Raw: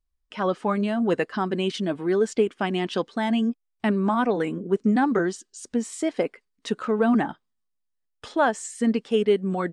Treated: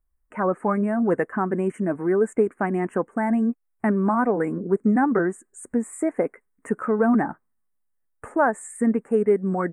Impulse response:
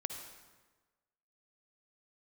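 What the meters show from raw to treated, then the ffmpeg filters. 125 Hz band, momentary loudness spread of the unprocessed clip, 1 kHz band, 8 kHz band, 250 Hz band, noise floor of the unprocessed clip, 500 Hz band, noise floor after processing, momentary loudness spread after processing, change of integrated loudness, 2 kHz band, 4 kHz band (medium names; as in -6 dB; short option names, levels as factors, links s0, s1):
+1.5 dB, 8 LU, +1.5 dB, -3.0 dB, +1.5 dB, -77 dBFS, +1.5 dB, -72 dBFS, 8 LU, +1.5 dB, +0.5 dB, under -25 dB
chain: -filter_complex "[0:a]asplit=2[s0][s1];[s1]acompressor=threshold=0.0224:ratio=6,volume=0.75[s2];[s0][s2]amix=inputs=2:normalize=0,asuperstop=centerf=4200:order=8:qfactor=0.67"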